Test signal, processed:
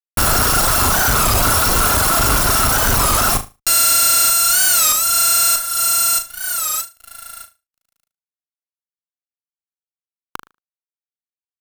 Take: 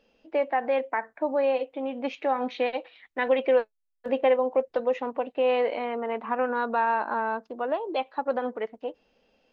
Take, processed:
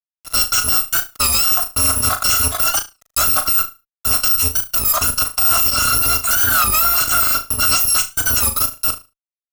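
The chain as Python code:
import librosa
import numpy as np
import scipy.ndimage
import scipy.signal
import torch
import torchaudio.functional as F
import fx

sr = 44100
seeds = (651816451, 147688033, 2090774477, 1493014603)

p1 = fx.bit_reversed(x, sr, seeds[0], block=256)
p2 = fx.highpass(p1, sr, hz=48.0, slope=6)
p3 = fx.dereverb_blind(p2, sr, rt60_s=1.1)
p4 = fx.high_shelf_res(p3, sr, hz=1700.0, db=-8.0, q=3.0)
p5 = fx.rider(p4, sr, range_db=3, speed_s=2.0)
p6 = p4 + (p5 * 10.0 ** (-1.0 / 20.0))
p7 = fx.fuzz(p6, sr, gain_db=42.0, gate_db=-48.0)
p8 = p7 + fx.room_flutter(p7, sr, wall_m=6.4, rt60_s=0.26, dry=0)
y = fx.record_warp(p8, sr, rpm=33.33, depth_cents=160.0)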